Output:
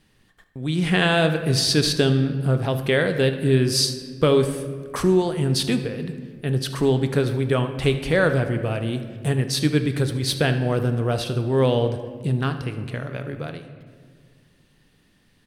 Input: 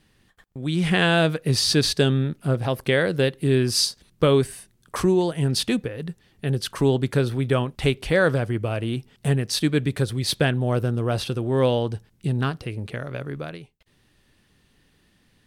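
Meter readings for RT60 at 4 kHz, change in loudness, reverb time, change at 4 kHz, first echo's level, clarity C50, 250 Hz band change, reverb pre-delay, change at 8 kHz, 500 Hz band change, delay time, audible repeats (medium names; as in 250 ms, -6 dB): 1.1 s, +1.0 dB, 1.9 s, +0.5 dB, -16.5 dB, 9.5 dB, +1.0 dB, 4 ms, +0.5 dB, +1.5 dB, 75 ms, 1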